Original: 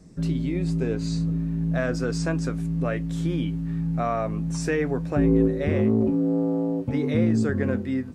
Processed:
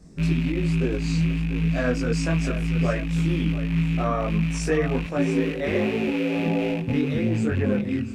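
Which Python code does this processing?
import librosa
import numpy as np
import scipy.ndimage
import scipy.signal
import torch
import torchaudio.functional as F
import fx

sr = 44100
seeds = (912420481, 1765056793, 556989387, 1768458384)

y = fx.rattle_buzz(x, sr, strikes_db=-27.0, level_db=-26.0)
y = fx.highpass(y, sr, hz=460.0, slope=6, at=(5.04, 6.46))
y = y + 10.0 ** (-13.0 / 20.0) * np.pad(y, (int(690 * sr / 1000.0), 0))[:len(y)]
y = fx.chorus_voices(y, sr, voices=6, hz=1.1, base_ms=22, depth_ms=3.0, mix_pct=50)
y = fx.rider(y, sr, range_db=10, speed_s=0.5)
y = F.gain(torch.from_numpy(y), 4.0).numpy()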